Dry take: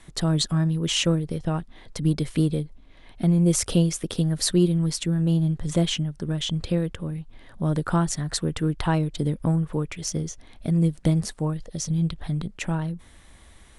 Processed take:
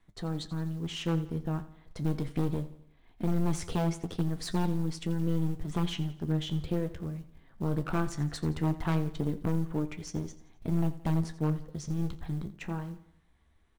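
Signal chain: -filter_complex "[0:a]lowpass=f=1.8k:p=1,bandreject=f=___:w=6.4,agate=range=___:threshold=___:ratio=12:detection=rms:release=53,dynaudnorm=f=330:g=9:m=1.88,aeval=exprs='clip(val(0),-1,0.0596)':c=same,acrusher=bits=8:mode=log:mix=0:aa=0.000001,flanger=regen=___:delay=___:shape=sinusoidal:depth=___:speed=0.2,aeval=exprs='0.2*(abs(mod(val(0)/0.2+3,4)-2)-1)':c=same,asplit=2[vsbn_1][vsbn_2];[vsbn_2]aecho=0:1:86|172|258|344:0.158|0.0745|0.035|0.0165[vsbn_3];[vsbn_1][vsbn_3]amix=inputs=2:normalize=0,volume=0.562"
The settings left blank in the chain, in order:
570, 0.447, 0.01, 56, 9.9, 5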